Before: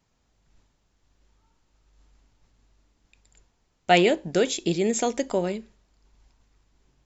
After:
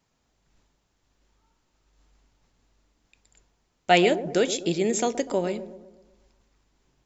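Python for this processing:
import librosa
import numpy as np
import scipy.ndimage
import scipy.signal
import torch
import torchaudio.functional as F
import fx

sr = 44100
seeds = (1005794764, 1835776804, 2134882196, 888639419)

p1 = fx.low_shelf(x, sr, hz=110.0, db=-7.0)
y = p1 + fx.echo_wet_lowpass(p1, sr, ms=124, feedback_pct=49, hz=750.0, wet_db=-11, dry=0)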